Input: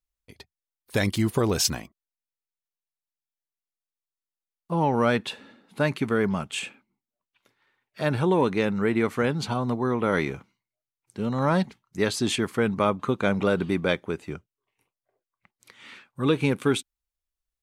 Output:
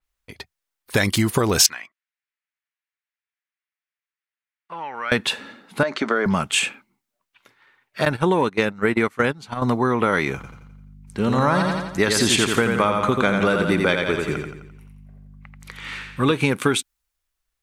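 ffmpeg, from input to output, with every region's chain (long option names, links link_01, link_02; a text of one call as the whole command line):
ffmpeg -i in.wav -filter_complex "[0:a]asettb=1/sr,asplit=3[link_01][link_02][link_03];[link_01]atrim=end=1.664[link_04];[link_02]atrim=start=1.66:end=5.12,asetpts=PTS-STARTPTS,afade=type=in:duration=0.004:curve=qsin,afade=type=out:start_time=3.456:duration=0.004:curve=qsin,bandpass=frequency=2000:width_type=q:width=1.8,acompressor=threshold=-41dB:ratio=2:attack=3.2:release=140:knee=1:detection=peak[link_05];[link_03]atrim=start=5.116[link_06];[link_04][link_05]acrossfade=duration=0.004:curve1=hsin:curve2=qsin[link_07];[link_07][link_06]acrossfade=duration=0.004:curve1=qsin:curve2=hsin,asettb=1/sr,asplit=3[link_08][link_09][link_10];[link_08]atrim=end=5.834[link_11];[link_09]atrim=start=5.83:end=6.26,asetpts=PTS-STARTPTS,afade=type=in:duration=0.004:curve=qsin,afade=type=out:start_time=0.426:duration=0.004:curve=qsin,highpass=frequency=230:width=0.5412,highpass=frequency=230:width=1.3066,equalizer=frequency=610:width_type=q:width=4:gain=9,equalizer=frequency=1400:width_type=q:width=4:gain=4,equalizer=frequency=2600:width_type=q:width=4:gain=-7,lowpass=frequency=6300:width=0.5412,lowpass=frequency=6300:width=1.3066,acompressor=threshold=-24dB:ratio=5:attack=3.2:release=140:knee=1:detection=peak[link_12];[link_10]atrim=start=6.256[link_13];[link_11][link_12]acrossfade=duration=0.004:curve1=hsin:curve2=qsin[link_14];[link_14][link_13]acrossfade=duration=0.004:curve1=qsin:curve2=hsin,asettb=1/sr,asplit=3[link_15][link_16][link_17];[link_15]atrim=end=8.054[link_18];[link_16]atrim=start=8.05:end=9.62,asetpts=PTS-STARTPTS,afade=type=in:duration=0.004:curve=qsin,afade=type=out:start_time=1.566:duration=0.004:curve=qsin,agate=range=-20dB:threshold=-25dB:ratio=16:release=100:detection=peak,deesser=0.35[link_19];[link_17]atrim=start=9.616[link_20];[link_18][link_19]acrossfade=duration=0.004:curve1=hsin:curve2=qsin[link_21];[link_21][link_20]acrossfade=duration=0.004:curve1=qsin:curve2=hsin,asettb=1/sr,asplit=3[link_22][link_23][link_24];[link_22]atrim=end=10.354[link_25];[link_23]atrim=start=10.35:end=16.32,asetpts=PTS-STARTPTS,afade=type=in:duration=0.004:curve=qsin,afade=type=out:start_time=5.966:duration=0.004:curve=qsin,aeval=exprs='val(0)+0.00355*(sin(2*PI*50*n/s)+sin(2*PI*2*50*n/s)/2+sin(2*PI*3*50*n/s)/3+sin(2*PI*4*50*n/s)/4+sin(2*PI*5*50*n/s)/5)':channel_layout=same,aecho=1:1:86|172|258|344|430|516:0.562|0.27|0.13|0.0622|0.0299|0.0143,atrim=end_sample=263277[link_26];[link_24]atrim=start=16.316[link_27];[link_25][link_26]acrossfade=duration=0.004:curve1=hsin:curve2=qsin[link_28];[link_28][link_27]acrossfade=duration=0.004:curve1=qsin:curve2=hsin,equalizer=frequency=1600:width=0.68:gain=6,acompressor=threshold=-22dB:ratio=6,adynamicequalizer=threshold=0.00501:dfrequency=4300:dqfactor=0.7:tfrequency=4300:tqfactor=0.7:attack=5:release=100:ratio=0.375:range=3:mode=boostabove:tftype=highshelf,volume=7dB" out.wav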